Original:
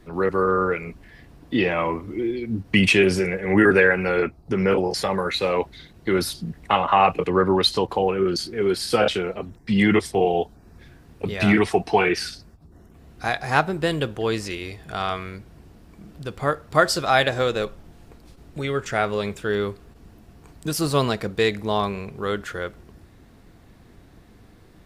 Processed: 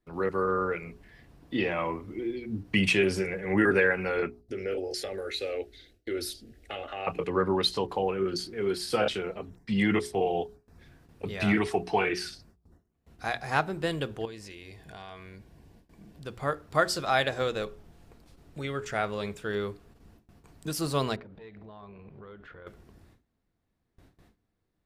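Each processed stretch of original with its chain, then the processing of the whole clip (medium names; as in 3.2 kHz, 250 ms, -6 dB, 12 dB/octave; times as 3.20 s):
4.41–7.07 s: compression 2:1, threshold -20 dBFS + static phaser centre 410 Hz, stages 4
14.25–16.23 s: Butterworth band-stop 1.3 kHz, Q 6 + compression 3:1, threshold -36 dBFS
21.16–22.67 s: compression 10:1, threshold -33 dBFS + distance through air 350 m + transformer saturation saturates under 370 Hz
whole clip: gate with hold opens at -39 dBFS; hum notches 60/120/180/240/300/360/420 Hz; trim -7 dB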